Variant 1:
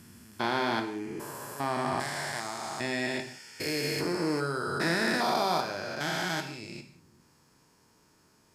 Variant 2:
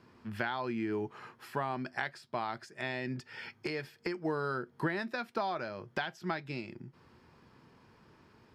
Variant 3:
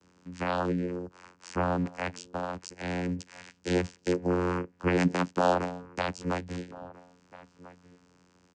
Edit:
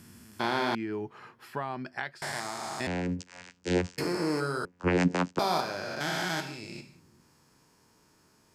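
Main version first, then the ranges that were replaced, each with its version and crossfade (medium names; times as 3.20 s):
1
0.75–2.22 s: from 2
2.87–3.98 s: from 3
4.65–5.39 s: from 3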